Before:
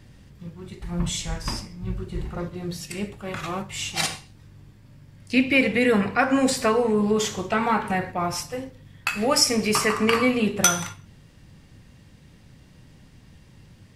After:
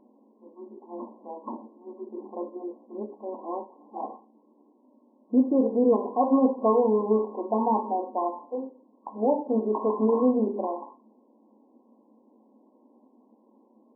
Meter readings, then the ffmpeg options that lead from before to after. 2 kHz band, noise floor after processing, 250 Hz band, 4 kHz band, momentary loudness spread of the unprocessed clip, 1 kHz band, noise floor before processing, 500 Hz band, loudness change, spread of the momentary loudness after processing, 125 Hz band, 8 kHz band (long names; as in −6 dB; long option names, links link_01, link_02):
below −40 dB, −62 dBFS, −1.5 dB, below −40 dB, 14 LU, −2.0 dB, −52 dBFS, 0.0 dB, −2.5 dB, 19 LU, below −10 dB, below −40 dB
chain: -af "afftfilt=real='re*between(b*sr/4096,210,1100)':imag='im*between(b*sr/4096,210,1100)':win_size=4096:overlap=0.75"